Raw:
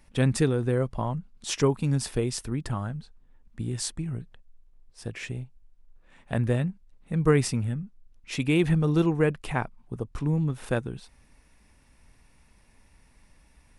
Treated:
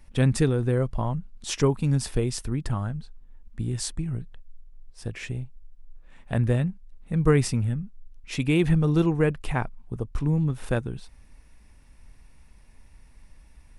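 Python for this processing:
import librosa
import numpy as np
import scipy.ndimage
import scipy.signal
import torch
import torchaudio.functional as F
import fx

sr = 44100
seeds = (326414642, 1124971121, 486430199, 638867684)

y = fx.low_shelf(x, sr, hz=77.0, db=10.5)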